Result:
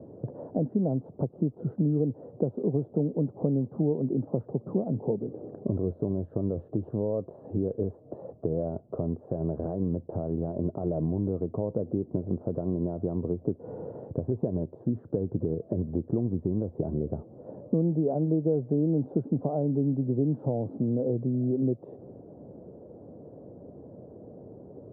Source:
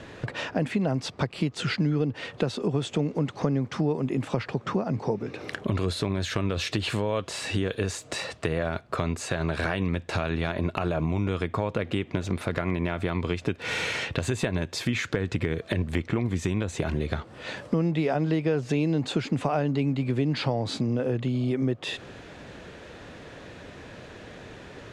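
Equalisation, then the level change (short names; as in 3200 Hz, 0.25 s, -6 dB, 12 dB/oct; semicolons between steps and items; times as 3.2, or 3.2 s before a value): HPF 110 Hz; inverse Chebyshev low-pass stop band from 2100 Hz, stop band 60 dB; 0.0 dB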